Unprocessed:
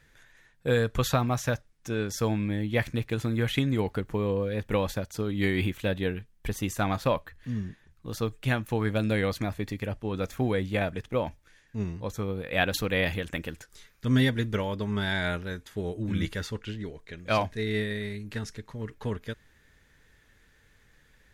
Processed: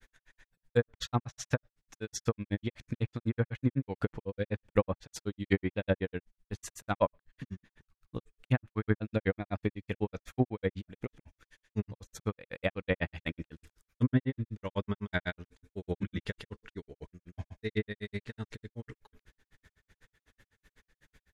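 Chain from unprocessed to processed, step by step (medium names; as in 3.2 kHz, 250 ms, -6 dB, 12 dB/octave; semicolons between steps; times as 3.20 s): granulator 76 ms, grains 8 per s, pitch spread up and down by 0 st; tremolo 2.7 Hz, depth 66%; low-pass that closes with the level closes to 1.4 kHz, closed at -28 dBFS; trim +3.5 dB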